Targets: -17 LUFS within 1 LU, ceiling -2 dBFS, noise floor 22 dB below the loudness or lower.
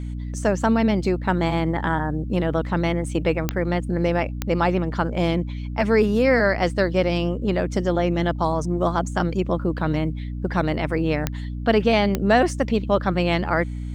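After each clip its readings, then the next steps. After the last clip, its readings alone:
clicks 4; hum 60 Hz; harmonics up to 300 Hz; hum level -27 dBFS; loudness -22.5 LUFS; peak -4.5 dBFS; loudness target -17.0 LUFS
-> de-click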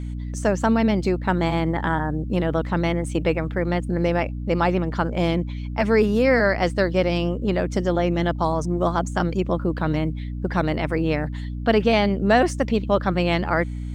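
clicks 0; hum 60 Hz; harmonics up to 300 Hz; hum level -27 dBFS
-> de-hum 60 Hz, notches 5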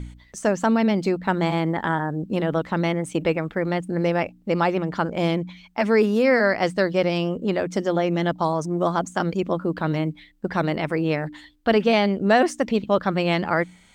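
hum none; loudness -23.0 LUFS; peak -5.0 dBFS; loudness target -17.0 LUFS
-> gain +6 dB; limiter -2 dBFS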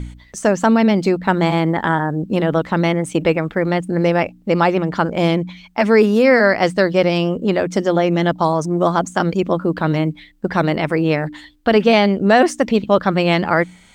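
loudness -17.0 LUFS; peak -2.0 dBFS; noise floor -47 dBFS

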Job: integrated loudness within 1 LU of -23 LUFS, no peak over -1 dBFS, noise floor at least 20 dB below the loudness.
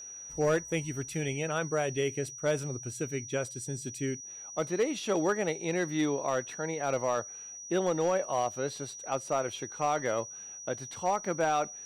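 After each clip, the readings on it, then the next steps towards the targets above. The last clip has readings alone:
clipped 0.4%; flat tops at -20.5 dBFS; steady tone 5800 Hz; tone level -42 dBFS; loudness -32.0 LUFS; peak -20.5 dBFS; loudness target -23.0 LUFS
-> clip repair -20.5 dBFS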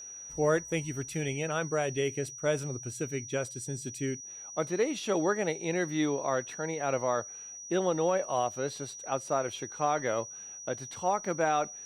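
clipped 0.0%; steady tone 5800 Hz; tone level -42 dBFS
-> notch 5800 Hz, Q 30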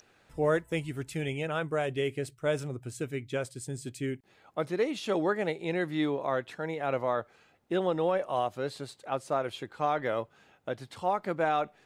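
steady tone none; loudness -32.0 LUFS; peak -15.0 dBFS; loudness target -23.0 LUFS
-> gain +9 dB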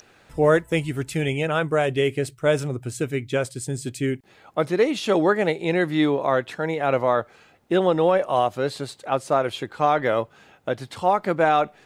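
loudness -23.0 LUFS; peak -6.0 dBFS; noise floor -56 dBFS

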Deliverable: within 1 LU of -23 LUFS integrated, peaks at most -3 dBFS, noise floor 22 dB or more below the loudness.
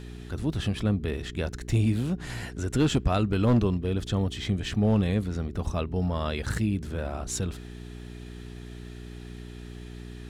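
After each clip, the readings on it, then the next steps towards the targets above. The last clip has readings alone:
clipped 0.4%; flat tops at -16.0 dBFS; hum 60 Hz; harmonics up to 420 Hz; hum level -39 dBFS; loudness -28.0 LUFS; peak -16.0 dBFS; loudness target -23.0 LUFS
-> clip repair -16 dBFS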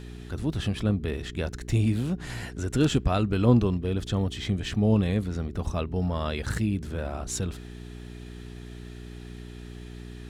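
clipped 0.0%; hum 60 Hz; harmonics up to 360 Hz; hum level -40 dBFS
-> de-hum 60 Hz, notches 6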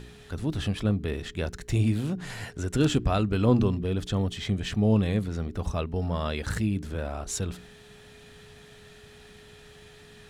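hum none; loudness -28.0 LUFS; peak -9.0 dBFS; loudness target -23.0 LUFS
-> gain +5 dB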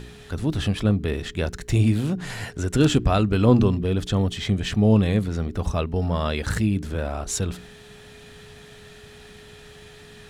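loudness -23.0 LUFS; peak -4.0 dBFS; noise floor -46 dBFS

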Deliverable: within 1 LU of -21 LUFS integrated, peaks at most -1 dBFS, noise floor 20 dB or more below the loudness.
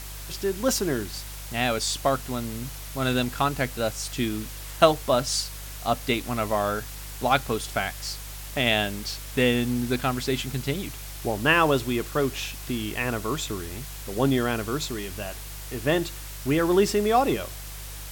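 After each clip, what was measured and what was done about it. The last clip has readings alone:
hum 50 Hz; harmonics up to 150 Hz; hum level -37 dBFS; noise floor -38 dBFS; noise floor target -46 dBFS; loudness -26.0 LUFS; peak -3.0 dBFS; loudness target -21.0 LUFS
-> de-hum 50 Hz, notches 3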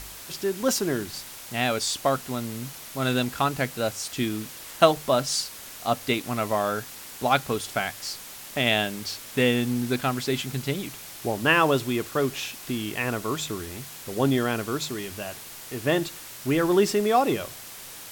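hum none; noise floor -42 dBFS; noise floor target -46 dBFS
-> denoiser 6 dB, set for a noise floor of -42 dBFS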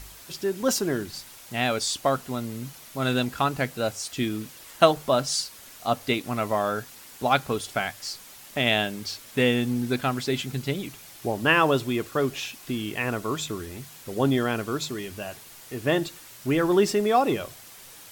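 noise floor -47 dBFS; loudness -26.0 LUFS; peak -3.0 dBFS; loudness target -21.0 LUFS
-> gain +5 dB; limiter -1 dBFS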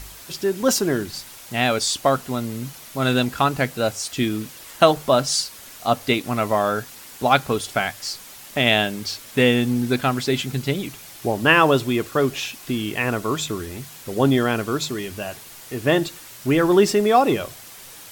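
loudness -21.0 LUFS; peak -1.0 dBFS; noise floor -42 dBFS

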